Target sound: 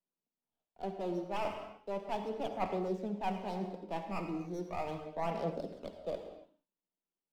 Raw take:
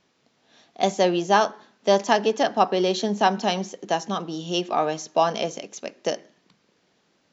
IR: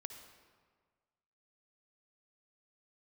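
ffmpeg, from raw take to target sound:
-filter_complex "[0:a]agate=range=0.0316:threshold=0.00316:ratio=16:detection=peak,areverse,acompressor=threshold=0.0251:ratio=5,areverse,highpass=150,equalizer=f=180:t=q:w=4:g=7,equalizer=f=960:t=q:w=4:g=5,equalizer=f=1400:t=q:w=4:g=9,lowpass=f=2200:w=0.5412,lowpass=f=2200:w=1.3066,acrossover=split=190|1100[s0][s1][s2];[s2]aeval=exprs='abs(val(0))':c=same[s3];[s0][s1][s3]amix=inputs=3:normalize=0[s4];[1:a]atrim=start_sample=2205,afade=t=out:st=0.35:d=0.01,atrim=end_sample=15876[s5];[s4][s5]afir=irnorm=-1:irlink=0,aphaser=in_gain=1:out_gain=1:delay=3.4:decay=0.29:speed=0.37:type=sinusoidal"

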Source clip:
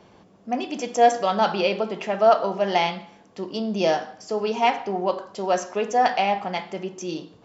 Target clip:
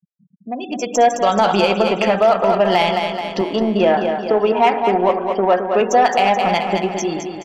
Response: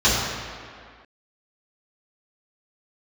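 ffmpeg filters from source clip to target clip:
-filter_complex "[0:a]acompressor=threshold=0.00891:ratio=2,asettb=1/sr,asplit=3[s0][s1][s2];[s0]atrim=end=3.414[s3];[s1]atrim=start=3.41:end=5.81,asetpts=PTS-STARTPTS,afade=t=in:d=0.004:c=qsin,afade=t=out:st=2.396:d=0.004:c=qsin,highpass=200,lowpass=2600[s4];[s2]atrim=start=5.806[s5];[s3][s4]acrossfade=d=0.004:c1=hsin:c2=qsin[s6];[s6][s5]acrossfade=d=0.004:c1=qsin:c2=hsin,dynaudnorm=f=240:g=7:m=3.98,afftfilt=real='re*gte(hypot(re,im),0.02)':imag='im*gte(hypot(re,im),0.02)':win_size=1024:overlap=0.75,aeval=exprs='0.335*(cos(1*acos(clip(val(0)/0.335,-1,1)))-cos(1*PI/2))+0.0119*(cos(7*acos(clip(val(0)/0.335,-1,1)))-cos(7*PI/2))':c=same,aecho=1:1:215|430|645|860|1075|1290|1505:0.422|0.236|0.132|0.0741|0.0415|0.0232|0.013,alimiter=level_in=3.98:limit=0.891:release=50:level=0:latency=1,volume=0.668"

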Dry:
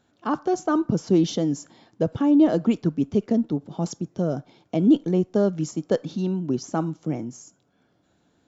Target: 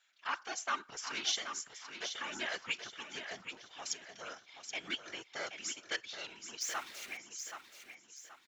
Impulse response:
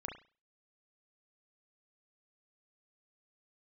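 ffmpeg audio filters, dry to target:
-filter_complex "[0:a]asettb=1/sr,asplit=3[s0][s1][s2];[s0]atrim=end=6.614[s3];[s1]atrim=start=6.61:end=7.17,asetpts=PTS-STARTPTS,afade=t=in:d=0.004:c=qsin,afade=t=out:st=0.556:d=0.004:c=qsin,aeval=exprs='val(0)+0.5*0.0126*sgn(val(0))':c=same[s4];[s2]atrim=start=7.166[s5];[s3][s4]acrossfade=d=0.004:c1=hsin:c2=qsin[s6];[s6][s5]acrossfade=d=0.004:c1=qsin:c2=hsin,aeval=exprs='0.398*(cos(1*acos(clip(val(0)/0.398,-1,1)))-cos(1*PI/2))+0.00316*(cos(6*acos(clip(val(0)/0.398,-1,1)))-cos(6*PI/2))+0.0112*(cos(7*acos(clip(val(0)/0.398,-1,1)))-cos(7*PI/2))':c=same,highpass=f=2100:t=q:w=2.2,afftfilt=real='hypot(re,im)*cos(2*PI*random(0))':imag='hypot(re,im)*sin(2*PI*random(1))':win_size=512:overlap=0.75,asplit=2[s7][s8];[s8]aecho=0:1:777|1554|2331|3108:0.376|0.132|0.046|0.0161[s9];[s7][s9]amix=inputs=2:normalize=0,volume=2"

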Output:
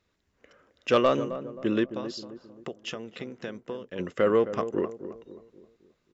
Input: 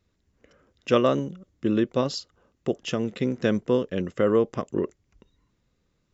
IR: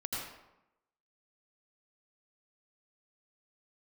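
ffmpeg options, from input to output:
-filter_complex "[0:a]asplit=3[s0][s1][s2];[s0]afade=t=out:st=1.85:d=0.02[s3];[s1]acompressor=threshold=0.0224:ratio=6,afade=t=in:st=1.85:d=0.02,afade=t=out:st=3.98:d=0.02[s4];[s2]afade=t=in:st=3.98:d=0.02[s5];[s3][s4][s5]amix=inputs=3:normalize=0,asplit=2[s6][s7];[s7]highpass=f=720:p=1,volume=3.55,asoftclip=type=tanh:threshold=0.473[s8];[s6][s8]amix=inputs=2:normalize=0,lowpass=f=3900:p=1,volume=0.501,asplit=2[s9][s10];[s10]adelay=265,lowpass=f=840:p=1,volume=0.299,asplit=2[s11][s12];[s12]adelay=265,lowpass=f=840:p=1,volume=0.47,asplit=2[s13][s14];[s14]adelay=265,lowpass=f=840:p=1,volume=0.47,asplit=2[s15][s16];[s16]adelay=265,lowpass=f=840:p=1,volume=0.47,asplit=2[s17][s18];[s18]adelay=265,lowpass=f=840:p=1,volume=0.47[s19];[s9][s11][s13][s15][s17][s19]amix=inputs=6:normalize=0,volume=0.75"

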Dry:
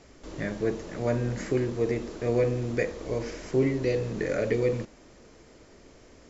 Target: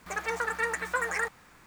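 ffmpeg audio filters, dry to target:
-af "asetrate=166698,aresample=44100,volume=0.668"

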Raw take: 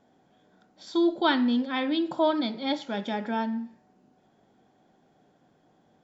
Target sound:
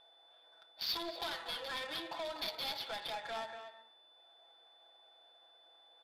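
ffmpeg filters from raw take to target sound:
-filter_complex "[0:a]highpass=f=610:w=0.5412,highpass=f=610:w=1.3066,equalizer=f=2800:t=o:w=0.27:g=5,aecho=1:1:6:0.8,acompressor=threshold=0.02:ratio=5,crystalizer=i=4.5:c=0,aresample=11025,asoftclip=type=hard:threshold=0.015,aresample=44100,aexciter=amount=3.8:drive=3.6:freq=4000,aeval=exprs='val(0)+0.00631*sin(2*PI*3500*n/s)':c=same,adynamicsmooth=sensitivity=5.5:basefreq=1100,asplit=2[s0][s1];[s1]adelay=240,highpass=300,lowpass=3400,asoftclip=type=hard:threshold=0.0168,volume=0.398[s2];[s0][s2]amix=inputs=2:normalize=0,volume=0.891"

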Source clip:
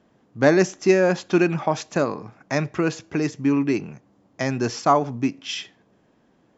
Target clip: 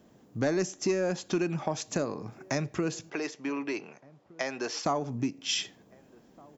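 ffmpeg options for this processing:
-filter_complex "[0:a]acrossover=split=740[s0][s1];[s0]acontrast=67[s2];[s2][s1]amix=inputs=2:normalize=0,asettb=1/sr,asplit=3[s3][s4][s5];[s3]atrim=end=3.104[s6];[s4]atrim=start=3.1:end=4.85,asetpts=PTS-STARTPTS,afade=t=in:d=0.004:c=qsin,afade=t=out:st=1.746:d=0.004:c=qsin,highpass=580,lowpass=4100[s7];[s5]atrim=start=4.846[s8];[s6][s7]acrossfade=d=0.004:c1=hsin:c2=qsin[s9];[s9][s8]acrossfade=d=0.004:c1=qsin:c2=hsin,acompressor=threshold=0.0447:ratio=2.5,aemphasis=mode=production:type=75fm,asplit=2[s10][s11];[s11]adelay=1516,volume=0.0631,highshelf=f=4000:g=-34.1[s12];[s10][s12]amix=inputs=2:normalize=0,volume=0.668"

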